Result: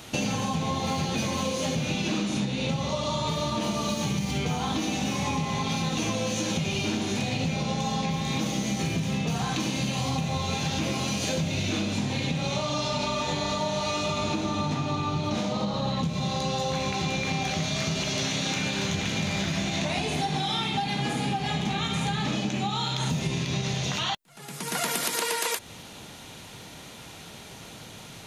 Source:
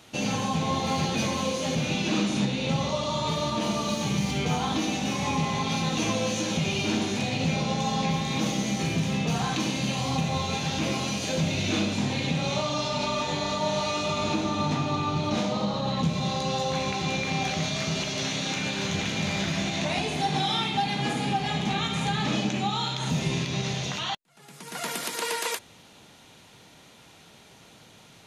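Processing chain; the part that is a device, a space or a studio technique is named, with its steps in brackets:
ASMR close-microphone chain (low-shelf EQ 100 Hz +6 dB; downward compressor, threshold −33 dBFS, peak gain reduction 13.5 dB; high-shelf EQ 10,000 Hz +6 dB)
level +7.5 dB

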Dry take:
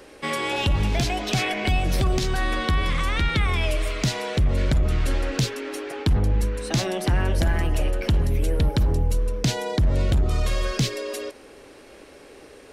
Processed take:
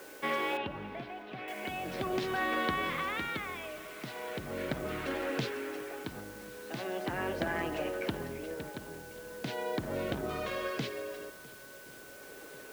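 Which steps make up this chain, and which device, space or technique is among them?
shortwave radio (band-pass filter 260–2,700 Hz; amplitude tremolo 0.39 Hz, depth 74%; steady tone 1,500 Hz −52 dBFS; white noise bed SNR 18 dB)
0:00.57–0:01.48: high-frequency loss of the air 290 metres
feedback echo with a long and a short gap by turns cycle 1,090 ms, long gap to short 1.5 to 1, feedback 55%, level −21.5 dB
level −3 dB

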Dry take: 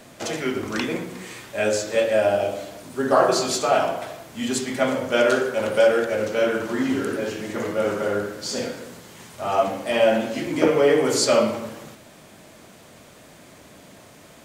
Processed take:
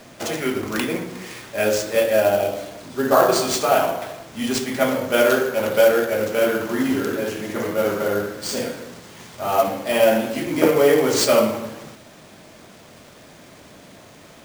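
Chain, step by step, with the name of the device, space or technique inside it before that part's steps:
early companding sampler (sample-rate reduction 13,000 Hz, jitter 0%; log-companded quantiser 6 bits)
level +2 dB

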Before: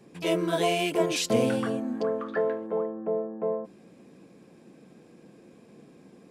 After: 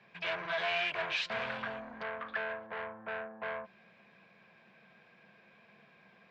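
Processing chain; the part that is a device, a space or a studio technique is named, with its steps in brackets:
0:01.46–0:02.77: parametric band 1,900 Hz −3.5 dB 2.1 octaves
scooped metal amplifier (tube saturation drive 31 dB, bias 0.45; loudspeaker in its box 110–3,700 Hz, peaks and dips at 210 Hz +7 dB, 370 Hz +3 dB, 660 Hz +8 dB, 1,000 Hz +6 dB, 1,600 Hz +9 dB, 2,300 Hz +6 dB; guitar amp tone stack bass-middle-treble 10-0-10)
level +5 dB

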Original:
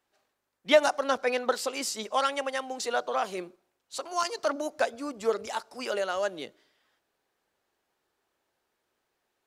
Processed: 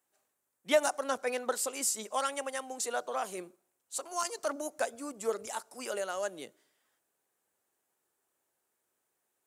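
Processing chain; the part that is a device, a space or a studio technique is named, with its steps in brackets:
budget condenser microphone (high-pass filter 86 Hz; high shelf with overshoot 6,200 Hz +10 dB, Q 1.5)
level −5.5 dB

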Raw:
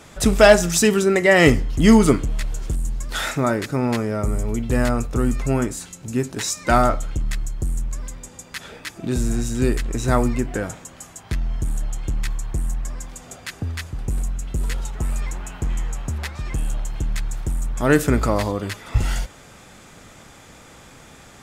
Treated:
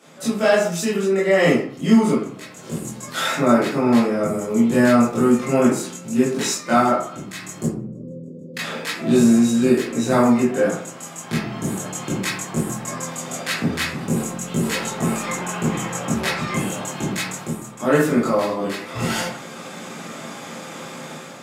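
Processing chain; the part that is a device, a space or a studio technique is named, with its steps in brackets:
0:07.64–0:08.57: elliptic low-pass filter 500 Hz, stop band 40 dB
far laptop microphone (convolution reverb RT60 0.55 s, pre-delay 17 ms, DRR −9.5 dB; high-pass filter 160 Hz 24 dB per octave; automatic gain control gain up to 5.5 dB)
level −3.5 dB

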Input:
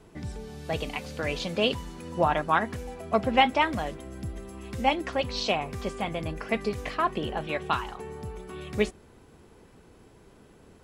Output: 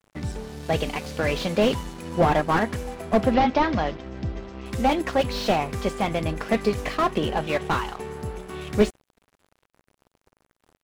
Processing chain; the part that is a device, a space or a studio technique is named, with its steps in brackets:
early transistor amplifier (dead-zone distortion −47.5 dBFS; slew-rate limiting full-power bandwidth 51 Hz)
0:03.34–0:04.66: Butterworth low-pass 5,700 Hz 36 dB per octave
level +7.5 dB

